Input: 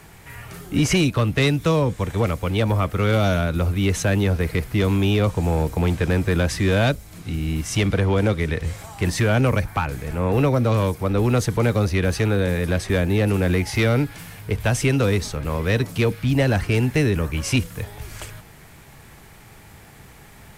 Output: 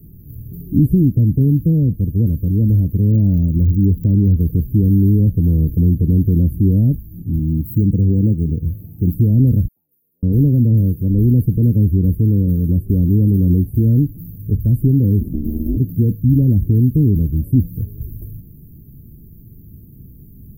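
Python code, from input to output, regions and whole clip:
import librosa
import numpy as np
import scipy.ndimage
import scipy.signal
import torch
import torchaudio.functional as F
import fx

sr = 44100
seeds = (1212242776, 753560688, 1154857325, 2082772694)

y = fx.lowpass(x, sr, hz=2800.0, slope=6, at=(3.1, 4.36), fade=0.02)
y = fx.dmg_crackle(y, sr, seeds[0], per_s=140.0, level_db=-30.0, at=(3.1, 4.36), fade=0.02)
y = fx.chain(y, sr, fx.highpass(hz=75.0, slope=12),
    fx.peak_eq(hz=4900.0, db=-6.5, octaves=0.22),
    fx.resample_linear(factor=2), at=(7.39, 9.14))
y = fx.chain(y, sr, fx.bandpass_q(hz=1900.0, q=1.3),
    fx.differentiator(), at=(9.68, 10.23))
y = fx.chain(y, sr, fx.ring_mod(carrier_hz=150.0),
    fx.band_squash(depth_pct=70), at=(15.21, 15.77))
y = scipy.signal.sosfilt(scipy.signal.cheby2(4, 70, [1100.0, 6100.0], 'bandstop', fs=sr, output='sos'), y)
y = fx.high_shelf(y, sr, hz=12000.0, db=9.0)
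y = y * 10.0 ** (8.0 / 20.0)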